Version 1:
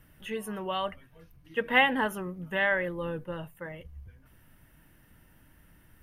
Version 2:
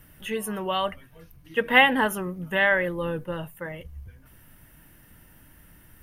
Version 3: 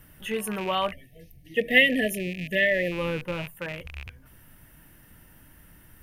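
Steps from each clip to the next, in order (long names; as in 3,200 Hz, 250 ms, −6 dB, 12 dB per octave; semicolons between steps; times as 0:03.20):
high-shelf EQ 6,400 Hz +6.5 dB; level +5 dB
loose part that buzzes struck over −39 dBFS, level −26 dBFS; time-frequency box erased 0:00.92–0:02.92, 740–1,700 Hz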